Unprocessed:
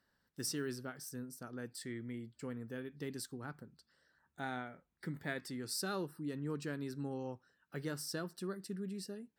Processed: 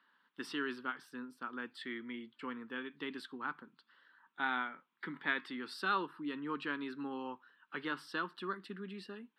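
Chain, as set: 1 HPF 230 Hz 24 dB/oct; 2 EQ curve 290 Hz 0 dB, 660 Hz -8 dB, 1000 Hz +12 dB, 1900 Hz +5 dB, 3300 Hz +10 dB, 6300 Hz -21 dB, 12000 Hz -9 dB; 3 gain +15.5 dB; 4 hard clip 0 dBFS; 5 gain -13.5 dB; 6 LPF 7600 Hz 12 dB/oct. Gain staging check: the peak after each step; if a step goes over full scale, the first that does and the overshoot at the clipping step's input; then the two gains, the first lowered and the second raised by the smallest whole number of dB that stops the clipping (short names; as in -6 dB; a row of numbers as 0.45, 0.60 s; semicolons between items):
-26.5, -21.5, -6.0, -6.0, -19.5, -19.5 dBFS; no overload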